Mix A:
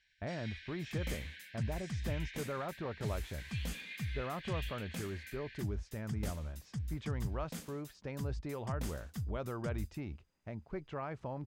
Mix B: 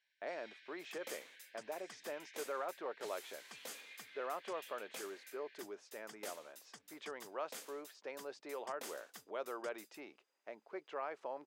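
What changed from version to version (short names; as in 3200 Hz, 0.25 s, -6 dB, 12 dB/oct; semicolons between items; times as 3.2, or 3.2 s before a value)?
first sound -9.0 dB; master: add HPF 390 Hz 24 dB/oct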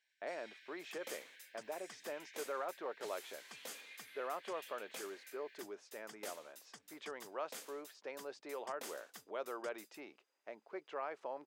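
first sound: remove Chebyshev low-pass 4700 Hz, order 2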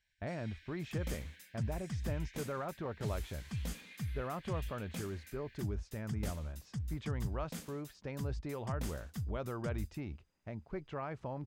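master: remove HPF 390 Hz 24 dB/oct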